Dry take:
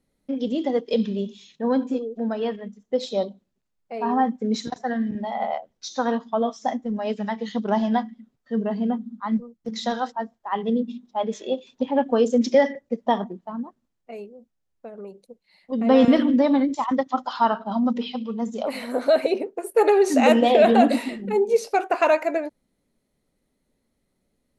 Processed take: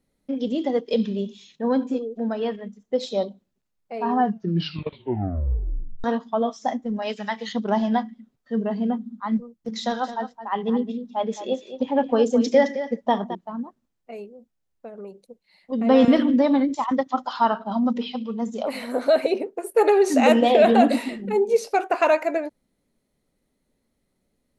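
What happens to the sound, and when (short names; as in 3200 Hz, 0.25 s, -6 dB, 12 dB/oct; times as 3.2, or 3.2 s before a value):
4.13 tape stop 1.91 s
7.02–7.53 tilt shelf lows -7 dB, about 750 Hz
9.82–13.35 echo 0.216 s -11.5 dB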